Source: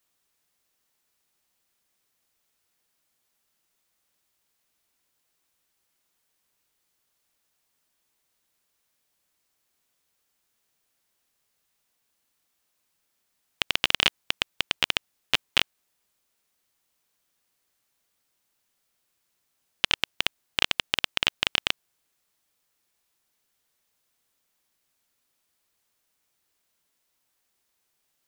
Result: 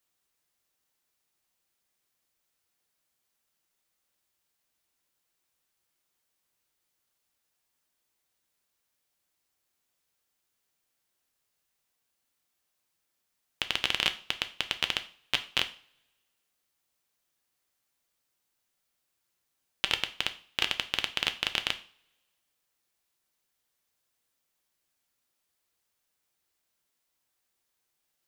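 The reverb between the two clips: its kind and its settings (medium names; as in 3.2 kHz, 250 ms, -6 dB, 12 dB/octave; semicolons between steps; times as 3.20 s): two-slope reverb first 0.4 s, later 1.5 s, from -26 dB, DRR 8 dB; trim -5 dB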